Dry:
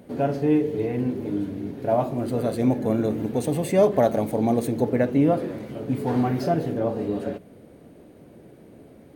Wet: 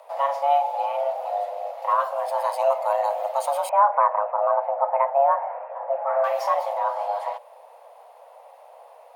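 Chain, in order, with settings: 3.69–6.24 LPF 1500 Hz 24 dB/oct; frequency shift +410 Hz

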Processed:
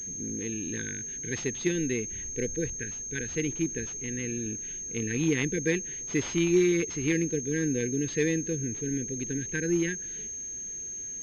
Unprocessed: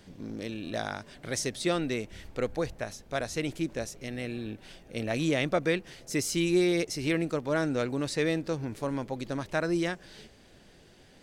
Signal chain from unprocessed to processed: brick-wall FIR band-stop 500–1500 Hz; pulse-width modulation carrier 6400 Hz; gain +2 dB

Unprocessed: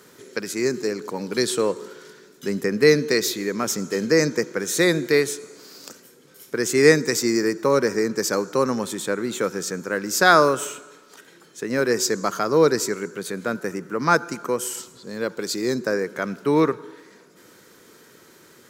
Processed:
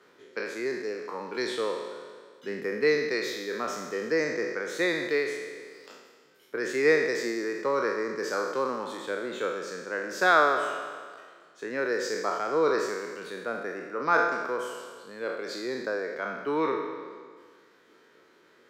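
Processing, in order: spectral trails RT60 1.83 s; three-band isolator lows -12 dB, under 290 Hz, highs -19 dB, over 4100 Hz; reverb removal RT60 0.59 s; gain -7.5 dB

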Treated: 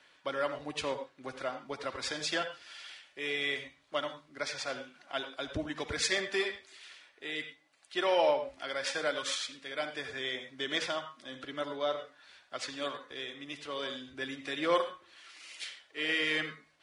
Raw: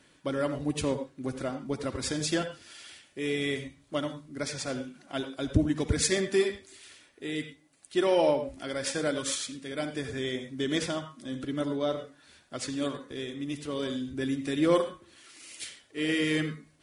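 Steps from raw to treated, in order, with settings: three-band isolator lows -18 dB, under 560 Hz, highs -16 dB, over 5400 Hz; gain +2 dB

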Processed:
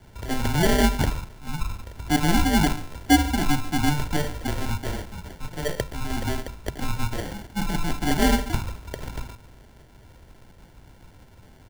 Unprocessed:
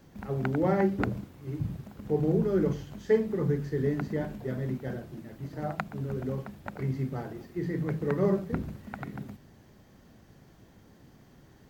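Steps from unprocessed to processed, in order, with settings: echo 0.141 s -17.5 dB; sample-and-hold 33×; frequency shift -150 Hz; gain +6.5 dB

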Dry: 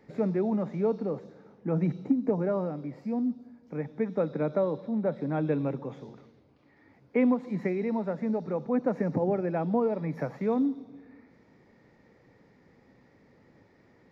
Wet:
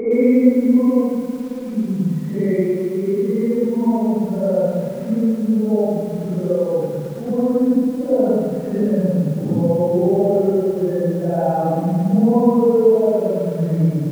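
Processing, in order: spectral contrast raised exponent 1.7; in parallel at +2.5 dB: compressor 8:1, threshold -37 dBFS, peak gain reduction 17 dB; on the sum: Paulstretch 4.7×, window 0.10 s, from 7.13; lo-fi delay 0.11 s, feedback 80%, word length 8-bit, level -9 dB; gain +7.5 dB

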